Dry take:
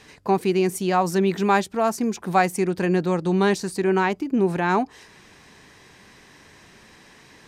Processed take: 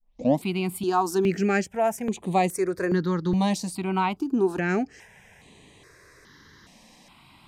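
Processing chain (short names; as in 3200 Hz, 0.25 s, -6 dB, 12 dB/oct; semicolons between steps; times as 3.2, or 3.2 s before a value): tape start at the beginning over 0.43 s; step phaser 2.4 Hz 390–5300 Hz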